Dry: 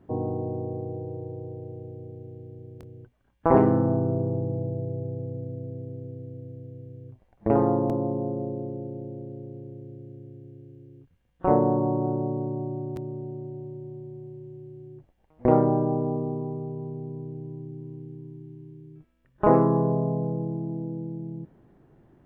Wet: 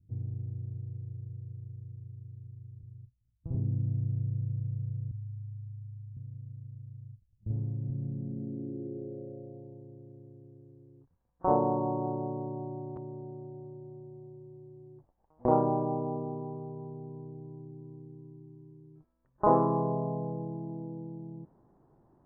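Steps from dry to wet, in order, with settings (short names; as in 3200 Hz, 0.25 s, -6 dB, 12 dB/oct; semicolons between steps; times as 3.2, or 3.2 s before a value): low-pass sweep 110 Hz -> 1000 Hz, 7.77–9.88; 5.11–6.17 Chebyshev band-stop 120–880 Hz, order 5; gain -8 dB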